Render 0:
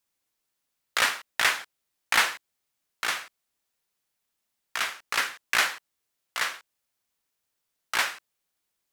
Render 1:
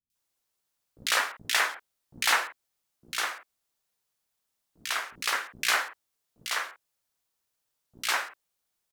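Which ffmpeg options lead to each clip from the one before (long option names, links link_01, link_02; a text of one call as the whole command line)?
ffmpeg -i in.wav -filter_complex "[0:a]acrossover=split=270|2200[link_01][link_02][link_03];[link_03]adelay=100[link_04];[link_02]adelay=150[link_05];[link_01][link_05][link_04]amix=inputs=3:normalize=0" out.wav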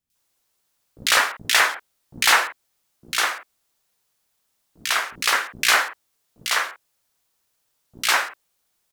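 ffmpeg -i in.wav -af "asoftclip=type=tanh:threshold=-14dB,volume=9dB" out.wav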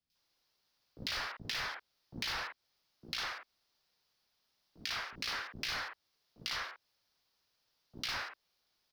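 ffmpeg -i in.wav -filter_complex "[0:a]asoftclip=type=hard:threshold=-21.5dB,highshelf=frequency=6200:width_type=q:width=3:gain=-8,acrossover=split=130[link_01][link_02];[link_02]acompressor=threshold=-34dB:ratio=3[link_03];[link_01][link_03]amix=inputs=2:normalize=0,volume=-5dB" out.wav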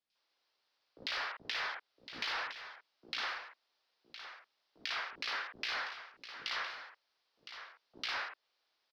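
ffmpeg -i in.wav -filter_complex "[0:a]acrossover=split=320 4900:gain=0.126 1 0.112[link_01][link_02][link_03];[link_01][link_02][link_03]amix=inputs=3:normalize=0,aecho=1:1:1012:0.282,volume=1.5dB" out.wav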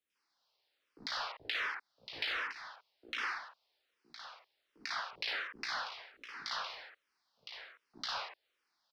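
ffmpeg -i in.wav -filter_complex "[0:a]asplit=2[link_01][link_02];[link_02]afreqshift=-1.3[link_03];[link_01][link_03]amix=inputs=2:normalize=1,volume=3dB" out.wav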